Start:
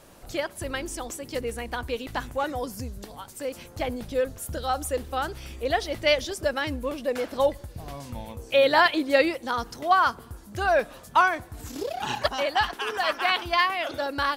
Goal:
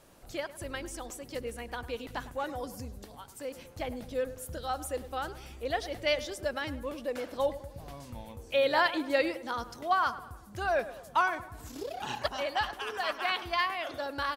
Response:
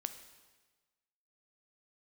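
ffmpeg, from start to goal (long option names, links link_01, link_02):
-filter_complex "[0:a]asplit=2[link_01][link_02];[link_02]adelay=104,lowpass=frequency=1900:poles=1,volume=-14dB,asplit=2[link_03][link_04];[link_04]adelay=104,lowpass=frequency=1900:poles=1,volume=0.55,asplit=2[link_05][link_06];[link_06]adelay=104,lowpass=frequency=1900:poles=1,volume=0.55,asplit=2[link_07][link_08];[link_08]adelay=104,lowpass=frequency=1900:poles=1,volume=0.55,asplit=2[link_09][link_10];[link_10]adelay=104,lowpass=frequency=1900:poles=1,volume=0.55,asplit=2[link_11][link_12];[link_12]adelay=104,lowpass=frequency=1900:poles=1,volume=0.55[link_13];[link_01][link_03][link_05][link_07][link_09][link_11][link_13]amix=inputs=7:normalize=0,volume=-7dB"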